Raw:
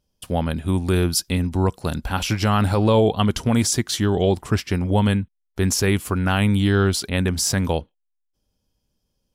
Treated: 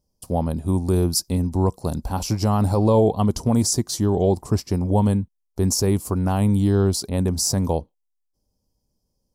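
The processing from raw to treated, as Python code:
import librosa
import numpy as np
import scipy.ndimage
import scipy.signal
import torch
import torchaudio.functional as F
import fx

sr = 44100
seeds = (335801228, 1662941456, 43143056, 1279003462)

y = fx.band_shelf(x, sr, hz=2200.0, db=-15.0, octaves=1.7)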